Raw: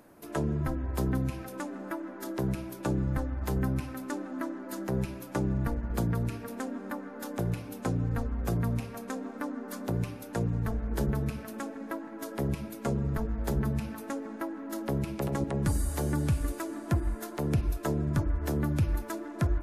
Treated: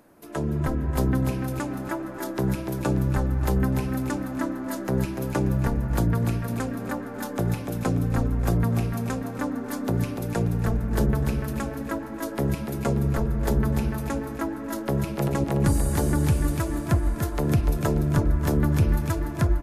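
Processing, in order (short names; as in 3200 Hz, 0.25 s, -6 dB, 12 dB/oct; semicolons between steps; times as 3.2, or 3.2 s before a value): AGC gain up to 5.5 dB; feedback echo 0.292 s, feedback 41%, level -6.5 dB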